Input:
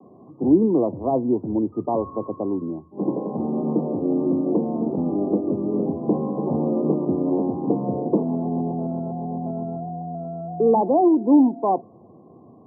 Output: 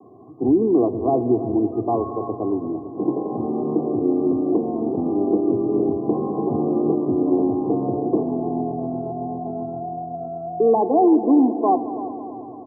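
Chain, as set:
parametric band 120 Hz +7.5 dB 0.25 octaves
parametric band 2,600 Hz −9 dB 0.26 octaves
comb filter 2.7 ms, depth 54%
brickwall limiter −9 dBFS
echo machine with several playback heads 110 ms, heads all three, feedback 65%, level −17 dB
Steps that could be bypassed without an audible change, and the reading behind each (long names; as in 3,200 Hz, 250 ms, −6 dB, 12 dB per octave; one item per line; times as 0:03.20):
parametric band 2,600 Hz: nothing at its input above 1,100 Hz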